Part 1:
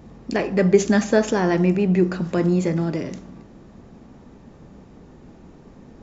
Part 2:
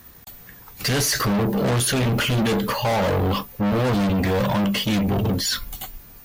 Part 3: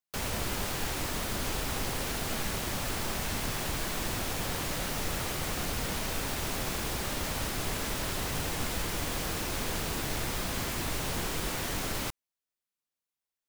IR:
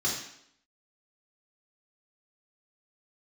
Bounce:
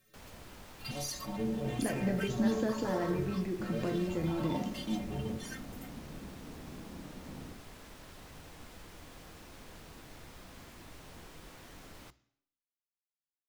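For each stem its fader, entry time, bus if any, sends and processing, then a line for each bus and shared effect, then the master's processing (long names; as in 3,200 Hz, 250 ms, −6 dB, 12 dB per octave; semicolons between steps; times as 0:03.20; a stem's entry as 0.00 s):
−3.5 dB, 1.50 s, send −14.5 dB, downward compressor, threshold −28 dBFS, peak gain reduction 17.5 dB
−2.5 dB, 0.00 s, no send, stiff-string resonator 66 Hz, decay 0.59 s, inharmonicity 0.03; step-sequenced phaser 2.2 Hz 250–7,800 Hz
−17.0 dB, 0.00 s, send −23.5 dB, mains-hum notches 60/120 Hz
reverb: on, RT60 0.70 s, pre-delay 3 ms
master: high-shelf EQ 4,900 Hz −6 dB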